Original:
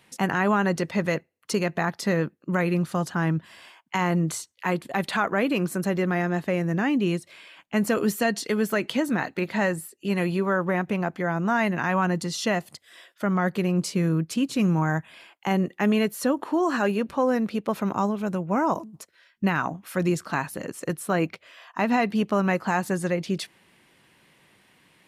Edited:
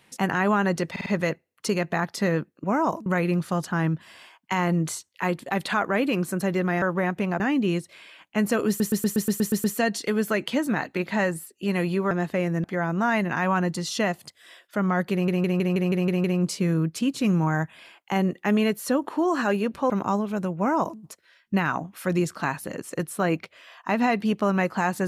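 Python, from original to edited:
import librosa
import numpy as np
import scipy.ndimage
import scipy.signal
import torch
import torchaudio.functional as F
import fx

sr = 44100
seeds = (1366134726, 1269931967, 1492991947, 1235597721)

y = fx.edit(x, sr, fx.stutter(start_s=0.91, slice_s=0.05, count=4),
    fx.swap(start_s=6.25, length_s=0.53, other_s=10.53, other_length_s=0.58),
    fx.stutter(start_s=8.06, slice_s=0.12, count=9),
    fx.stutter(start_s=13.59, slice_s=0.16, count=8),
    fx.cut(start_s=17.25, length_s=0.55),
    fx.duplicate(start_s=18.47, length_s=0.42, to_s=2.49), tone=tone)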